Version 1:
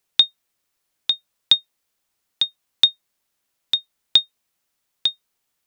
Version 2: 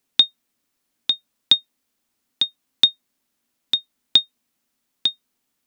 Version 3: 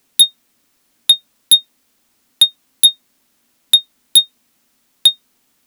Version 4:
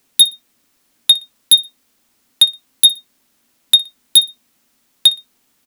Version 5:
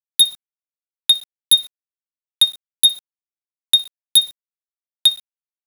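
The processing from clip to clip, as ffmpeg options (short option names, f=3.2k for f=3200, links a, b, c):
-af "equalizer=f=250:t=o:w=0.63:g=13.5"
-af "aeval=exprs='0.891*sin(PI/2*3.98*val(0)/0.891)':c=same,aeval=exprs='0.891*(cos(1*acos(clip(val(0)/0.891,-1,1)))-cos(1*PI/2))+0.0224*(cos(7*acos(clip(val(0)/0.891,-1,1)))-cos(7*PI/2))':c=same,volume=-1dB"
-af "aecho=1:1:60|120:0.0944|0.0255"
-af "acrusher=bits=5:mix=0:aa=0.000001,volume=-3.5dB"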